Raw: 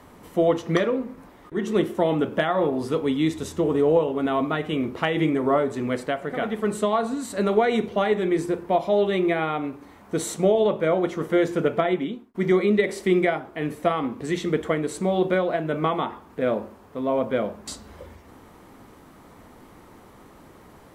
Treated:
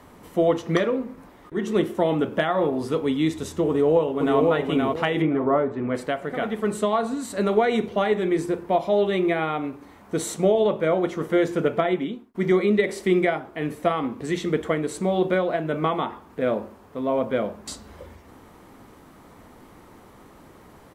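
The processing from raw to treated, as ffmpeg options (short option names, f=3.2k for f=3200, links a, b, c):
-filter_complex "[0:a]asplit=2[a][b];[b]afade=t=in:st=3.68:d=0.01,afade=t=out:st=4.41:d=0.01,aecho=0:1:520|1040|1560|2080:0.794328|0.198582|0.0496455|0.0124114[c];[a][c]amix=inputs=2:normalize=0,asettb=1/sr,asplit=3[d][e][f];[d]atrim=end=5.224[g];[e]atrim=start=5.22:end=5.95,asetpts=PTS-STARTPTS,afade=t=in:d=0.004:c=qsin,afade=t=out:st=0.726:d=0.004:c=qsin,lowpass=1.9k[h];[f]atrim=start=5.946[i];[g][h]acrossfade=d=0.004:c1=hsin:c2=qsin[j];[j][i]acrossfade=d=0.004:c1=qsin:c2=hsin"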